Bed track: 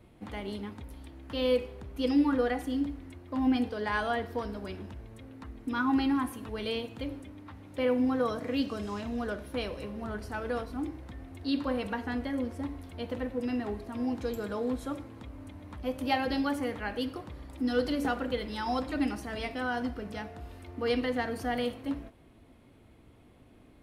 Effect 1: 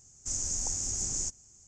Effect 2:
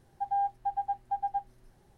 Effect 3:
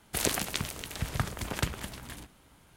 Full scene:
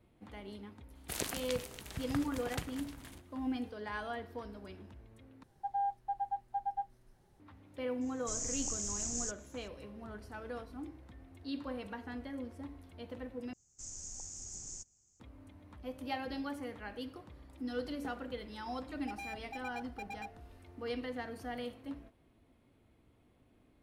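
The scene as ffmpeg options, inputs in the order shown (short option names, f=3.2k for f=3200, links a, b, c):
-filter_complex "[2:a]asplit=2[a][b];[1:a]asplit=2[c][d];[0:a]volume=-10dB[e];[b]aeval=exprs='0.0316*(abs(mod(val(0)/0.0316+3,4)-2)-1)':c=same[f];[e]asplit=3[g][h][i];[g]atrim=end=5.434[j];[a]atrim=end=1.97,asetpts=PTS-STARTPTS,volume=-5dB[k];[h]atrim=start=7.396:end=13.534[l];[d]atrim=end=1.67,asetpts=PTS-STARTPTS,volume=-13.5dB[m];[i]atrim=start=15.196[n];[3:a]atrim=end=2.76,asetpts=PTS-STARTPTS,volume=-9dB,afade=t=in:d=0.004:c=hsin,afade=t=out:st=2.756:d=0.004:c=hsin,adelay=950[o];[c]atrim=end=1.67,asetpts=PTS-STARTPTS,volume=-5.5dB,afade=t=in:d=0.004:c=hsin,afade=t=out:st=1.666:d=0.004:c=hsin,adelay=8010[p];[f]atrim=end=1.97,asetpts=PTS-STARTPTS,volume=-8dB,afade=t=in:d=0.004:c=hsin,afade=t=out:st=1.966:d=0.004:c=hsin,adelay=18870[q];[j][k]acrossfade=d=0.004:c1=hsin:c2=hsin[r];[r][l]acrossfade=d=0.004:c1=hsin:c2=hsin[s];[s][m]acrossfade=d=0.004:c1=hsin:c2=hsin[t];[t][n]acrossfade=d=0.004:c1=hsin:c2=hsin[u];[u][o][p][q]amix=inputs=4:normalize=0"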